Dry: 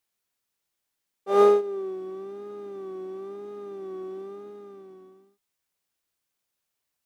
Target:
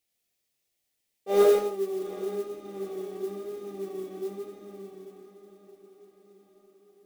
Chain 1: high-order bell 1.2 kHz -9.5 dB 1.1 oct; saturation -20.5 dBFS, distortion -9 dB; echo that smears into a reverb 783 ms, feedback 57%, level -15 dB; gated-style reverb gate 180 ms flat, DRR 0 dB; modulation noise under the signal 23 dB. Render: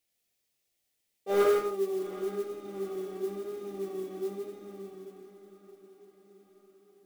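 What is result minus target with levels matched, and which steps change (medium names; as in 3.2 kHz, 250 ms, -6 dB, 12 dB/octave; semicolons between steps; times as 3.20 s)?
saturation: distortion +14 dB
change: saturation -10 dBFS, distortion -23 dB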